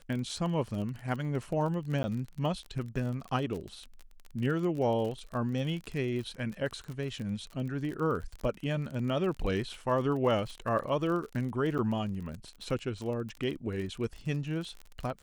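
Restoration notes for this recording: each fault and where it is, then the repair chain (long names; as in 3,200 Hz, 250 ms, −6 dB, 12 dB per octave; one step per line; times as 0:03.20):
surface crackle 34 per second −36 dBFS
0:02.03–0:02.04: drop-out 10 ms
0:11.78–0:11.79: drop-out 8.1 ms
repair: click removal
repair the gap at 0:02.03, 10 ms
repair the gap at 0:11.78, 8.1 ms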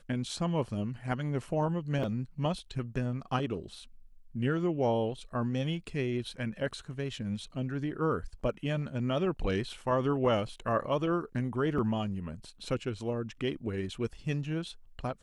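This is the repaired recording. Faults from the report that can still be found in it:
none of them is left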